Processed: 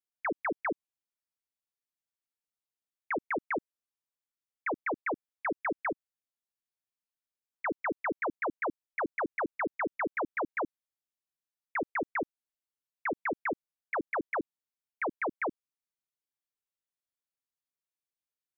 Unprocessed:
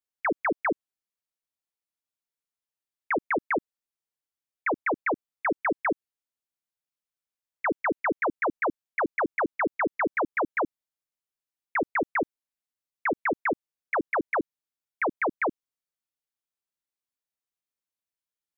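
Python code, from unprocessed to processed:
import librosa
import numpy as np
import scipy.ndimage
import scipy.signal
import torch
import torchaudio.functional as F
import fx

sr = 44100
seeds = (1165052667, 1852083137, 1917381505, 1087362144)

y = fx.dynamic_eq(x, sr, hz=220.0, q=1.8, threshold_db=-42.0, ratio=4.0, max_db=-4, at=(5.8, 7.71))
y = y * librosa.db_to_amplitude(-6.0)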